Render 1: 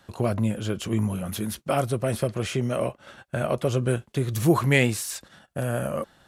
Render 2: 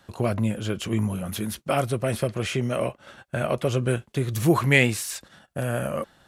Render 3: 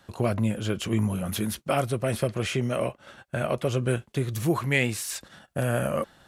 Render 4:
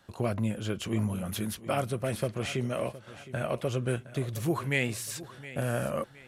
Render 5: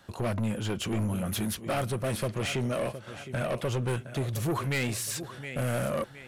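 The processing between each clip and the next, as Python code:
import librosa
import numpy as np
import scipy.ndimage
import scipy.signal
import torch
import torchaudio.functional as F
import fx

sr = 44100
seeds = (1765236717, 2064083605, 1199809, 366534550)

y1 = fx.dynamic_eq(x, sr, hz=2300.0, q=1.2, threshold_db=-42.0, ratio=4.0, max_db=4)
y2 = fx.rider(y1, sr, range_db=4, speed_s=0.5)
y2 = F.gain(torch.from_numpy(y2), -2.0).numpy()
y3 = fx.echo_feedback(y2, sr, ms=715, feedback_pct=36, wet_db=-16)
y3 = F.gain(torch.from_numpy(y3), -4.5).numpy()
y4 = 10.0 ** (-29.5 / 20.0) * np.tanh(y3 / 10.0 ** (-29.5 / 20.0))
y4 = F.gain(torch.from_numpy(y4), 5.0).numpy()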